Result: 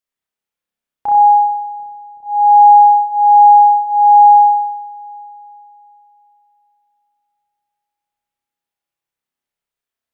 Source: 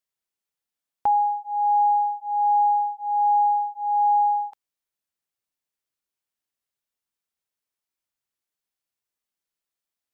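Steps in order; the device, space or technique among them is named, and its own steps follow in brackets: 1.49–2.23 inverse Chebyshev high-pass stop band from 690 Hz, stop band 40 dB; dub delay into a spring reverb (darkening echo 0.373 s, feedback 64%, low-pass 870 Hz, level -15.5 dB; spring tank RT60 1 s, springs 30 ms, chirp 40 ms, DRR -4.5 dB); gain -1 dB

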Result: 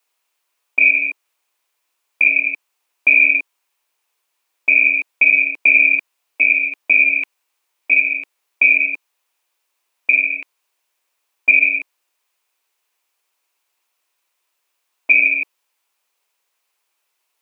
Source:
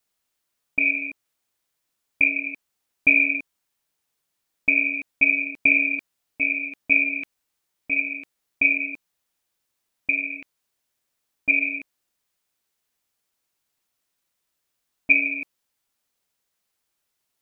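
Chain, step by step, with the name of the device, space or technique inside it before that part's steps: laptop speaker (HPF 350 Hz 24 dB/oct; bell 1000 Hz +6.5 dB 0.58 oct; bell 2500 Hz +6.5 dB 0.48 oct; limiter -7 dBFS, peak gain reduction 8.5 dB); gain +4.5 dB

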